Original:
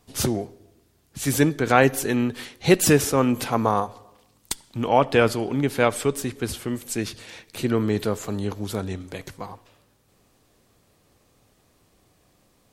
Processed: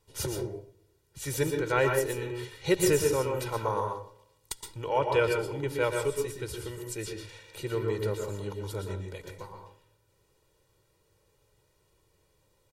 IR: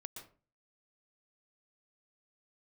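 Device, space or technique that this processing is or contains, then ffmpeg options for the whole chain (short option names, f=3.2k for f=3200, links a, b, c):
microphone above a desk: -filter_complex "[0:a]aecho=1:1:2.1:0.89[a];[1:a]atrim=start_sample=2205[b];[a][b]afir=irnorm=-1:irlink=0,volume=-5.5dB"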